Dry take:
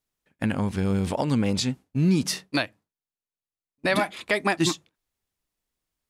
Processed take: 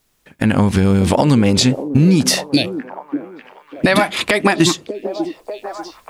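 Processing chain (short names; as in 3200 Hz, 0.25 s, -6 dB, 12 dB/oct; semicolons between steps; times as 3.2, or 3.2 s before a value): recorder AGC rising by 6.9 dB/s; 2.44–3.86 Chebyshev band-stop 460–3200 Hz, order 2; compressor, threshold -29 dBFS, peak gain reduction 11.5 dB; on a send: delay with a stepping band-pass 0.594 s, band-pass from 360 Hz, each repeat 0.7 oct, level -7 dB; on the sum: maximiser +20.5 dB; gain -1 dB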